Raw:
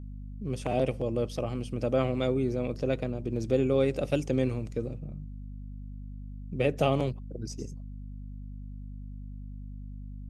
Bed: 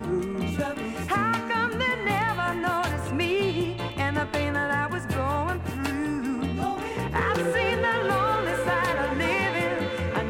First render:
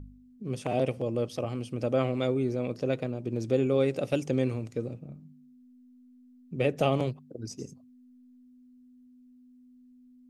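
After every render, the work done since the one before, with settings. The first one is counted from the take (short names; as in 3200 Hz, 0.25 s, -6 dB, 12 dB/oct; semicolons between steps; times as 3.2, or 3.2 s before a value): de-hum 50 Hz, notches 4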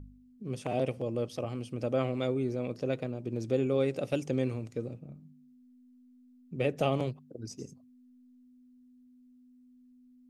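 gain -3 dB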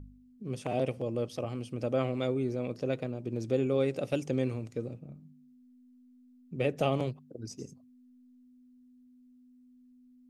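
nothing audible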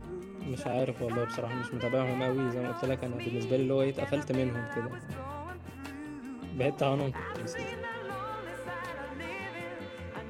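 add bed -14 dB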